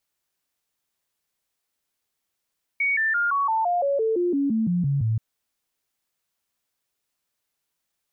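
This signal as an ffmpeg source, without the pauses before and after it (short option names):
-f lavfi -i "aevalsrc='0.106*clip(min(mod(t,0.17),0.17-mod(t,0.17))/0.005,0,1)*sin(2*PI*2240*pow(2,-floor(t/0.17)/3)*mod(t,0.17))':d=2.38:s=44100"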